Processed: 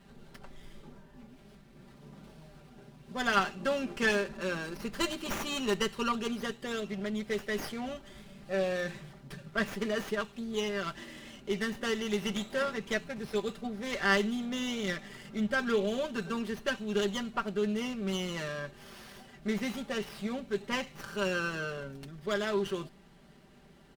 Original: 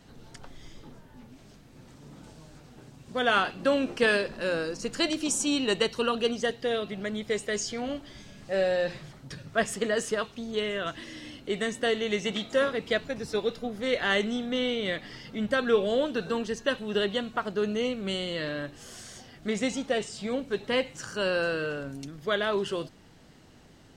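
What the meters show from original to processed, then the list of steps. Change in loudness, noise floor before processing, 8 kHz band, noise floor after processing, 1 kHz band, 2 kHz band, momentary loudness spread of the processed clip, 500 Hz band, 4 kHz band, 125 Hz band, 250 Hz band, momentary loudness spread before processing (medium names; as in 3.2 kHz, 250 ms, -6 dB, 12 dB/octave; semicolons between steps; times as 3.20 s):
-4.5 dB, -54 dBFS, -7.0 dB, -57 dBFS, -2.5 dB, -3.0 dB, 16 LU, -6.0 dB, -5.5 dB, -1.0 dB, -2.5 dB, 12 LU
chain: comb 5.1 ms, depth 75%; dynamic bell 530 Hz, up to -5 dB, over -36 dBFS, Q 2; sliding maximum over 5 samples; trim -4.5 dB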